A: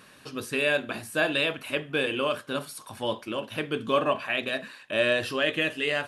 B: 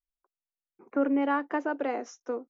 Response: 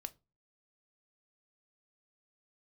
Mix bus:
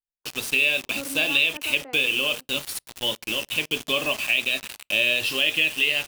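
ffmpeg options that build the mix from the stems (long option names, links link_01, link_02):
-filter_complex "[0:a]highshelf=frequency=2000:width_type=q:width=3:gain=9,acrusher=bits=4:mix=0:aa=0.000001,volume=-2dB,asplit=2[link_01][link_02];[link_02]volume=-17.5dB[link_03];[1:a]volume=-11dB[link_04];[2:a]atrim=start_sample=2205[link_05];[link_03][link_05]afir=irnorm=-1:irlink=0[link_06];[link_01][link_04][link_06]amix=inputs=3:normalize=0,acompressor=threshold=-21dB:ratio=2"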